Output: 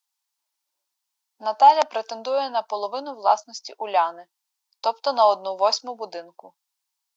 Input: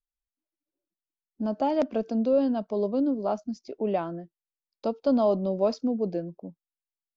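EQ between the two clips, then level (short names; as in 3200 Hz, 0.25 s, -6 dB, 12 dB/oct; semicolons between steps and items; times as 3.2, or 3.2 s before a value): resonant high-pass 890 Hz, resonance Q 4.9; high shelf 2200 Hz +10.5 dB; bell 4900 Hz +5.5 dB 1.3 oct; +3.5 dB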